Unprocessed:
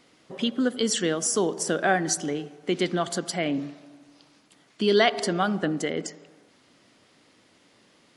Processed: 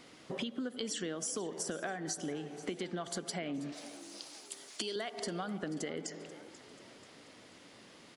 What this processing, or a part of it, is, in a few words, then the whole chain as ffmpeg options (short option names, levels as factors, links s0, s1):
serial compression, peaks first: -filter_complex "[0:a]acompressor=threshold=0.0224:ratio=6,acompressor=threshold=0.00794:ratio=2,asettb=1/sr,asplit=3[s0][s1][s2];[s0]atrim=end=3.724[s3];[s1]atrim=start=3.72:end=4.96,asetpts=PTS-STARTPTS,afade=t=in:d=0.004:c=qsin,afade=t=out:st=1.236:d=0.004:c=qsin,bass=f=250:g=-13,treble=f=4000:g=14[s4];[s2]atrim=start=4.956[s5];[s3][s4]acrossfade=d=0.004:c1=hsin:c2=qsin[s6];[s6][s5]acrossfade=d=0.004:c1=qsin:c2=hsin,asplit=5[s7][s8][s9][s10][s11];[s8]adelay=486,afreqshift=59,volume=0.141[s12];[s9]adelay=972,afreqshift=118,volume=0.0708[s13];[s10]adelay=1458,afreqshift=177,volume=0.0355[s14];[s11]adelay=1944,afreqshift=236,volume=0.0176[s15];[s7][s12][s13][s14][s15]amix=inputs=5:normalize=0,volume=1.41"